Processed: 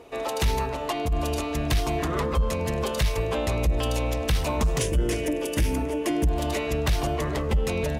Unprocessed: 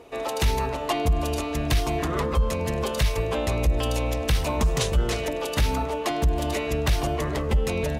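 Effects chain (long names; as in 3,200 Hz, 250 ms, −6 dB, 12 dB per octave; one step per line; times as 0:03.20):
0:00.62–0:01.12: downward compressor 4 to 1, threshold −24 dBFS, peak gain reduction 7 dB
0:04.79–0:06.27: thirty-one-band graphic EQ 315 Hz +11 dB, 800 Hz −11 dB, 1,250 Hz −11 dB, 4,000 Hz −12 dB, 10,000 Hz +6 dB
soft clipping −13.5 dBFS, distortion −23 dB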